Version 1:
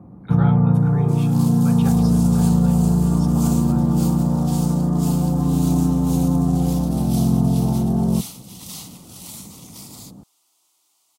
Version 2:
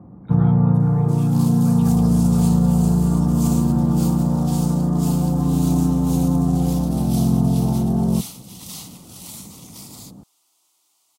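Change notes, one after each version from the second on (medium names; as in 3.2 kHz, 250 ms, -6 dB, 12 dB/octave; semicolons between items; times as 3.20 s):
speech -9.0 dB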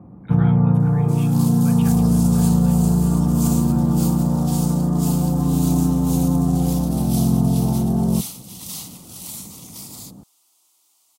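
speech: add high-order bell 2.2 kHz +9.5 dB 1.3 oct; master: add treble shelf 7.2 kHz +6 dB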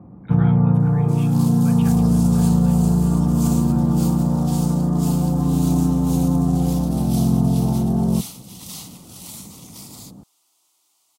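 master: add treble shelf 7.2 kHz -6 dB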